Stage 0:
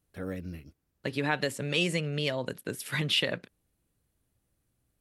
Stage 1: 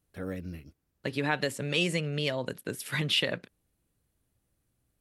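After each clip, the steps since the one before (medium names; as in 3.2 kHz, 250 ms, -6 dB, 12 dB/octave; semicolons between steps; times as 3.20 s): no audible change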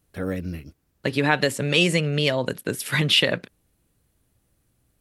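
de-esser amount 45%; trim +8.5 dB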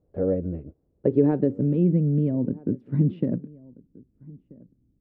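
low-pass sweep 540 Hz -> 260 Hz, 0.79–1.76 s; echo from a far wall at 220 m, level -23 dB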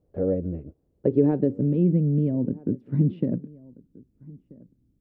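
dynamic bell 1.4 kHz, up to -4 dB, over -44 dBFS, Q 0.94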